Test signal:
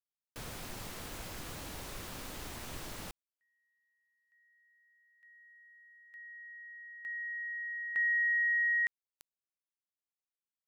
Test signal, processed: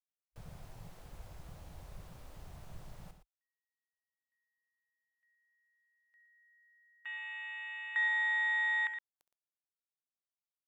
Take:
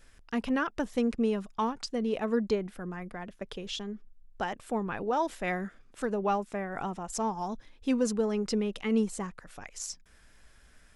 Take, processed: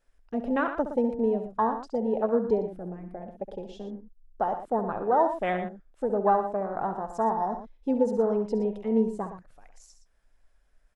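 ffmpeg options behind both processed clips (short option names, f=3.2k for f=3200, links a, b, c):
-filter_complex "[0:a]afwtdn=0.02,equalizer=f=680:t=o:w=1.5:g=9.5,asplit=2[a][b];[b]aecho=0:1:67.06|116.6:0.282|0.282[c];[a][c]amix=inputs=2:normalize=0,volume=-1.5dB"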